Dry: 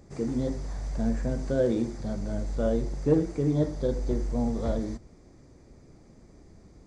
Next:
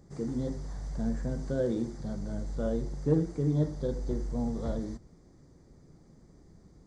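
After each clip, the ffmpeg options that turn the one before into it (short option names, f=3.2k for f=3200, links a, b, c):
-af "equalizer=f=160:t=o:w=0.33:g=7,equalizer=f=630:t=o:w=0.33:g=-3,equalizer=f=2.5k:t=o:w=0.33:g=-10,volume=-4.5dB"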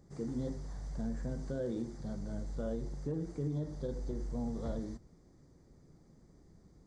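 -af "alimiter=limit=-23.5dB:level=0:latency=1:release=108,volume=-4.5dB"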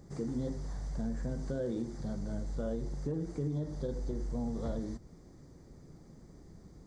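-af "acompressor=threshold=-48dB:ratio=1.5,volume=7dB"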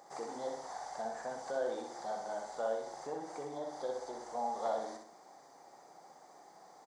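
-filter_complex "[0:a]highpass=f=780:t=q:w=4.4,asplit=2[a][b];[b]aecho=0:1:63|126|189|252|315:0.562|0.236|0.0992|0.0417|0.0175[c];[a][c]amix=inputs=2:normalize=0,volume=3dB"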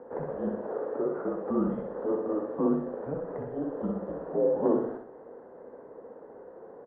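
-af "highpass=f=450:t=q:w=0.5412,highpass=f=450:t=q:w=1.307,lowpass=f=2.4k:t=q:w=0.5176,lowpass=f=2.4k:t=q:w=0.7071,lowpass=f=2.4k:t=q:w=1.932,afreqshift=-310,equalizer=f=250:t=o:w=1:g=7,equalizer=f=500:t=o:w=1:g=8,equalizer=f=1k:t=o:w=1:g=8,volume=1.5dB"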